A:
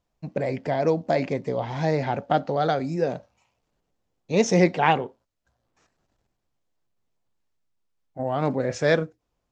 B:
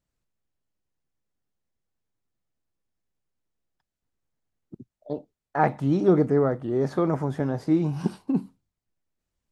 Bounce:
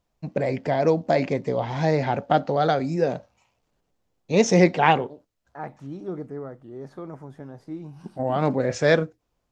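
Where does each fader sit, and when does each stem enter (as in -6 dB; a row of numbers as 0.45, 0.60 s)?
+2.0, -13.5 dB; 0.00, 0.00 s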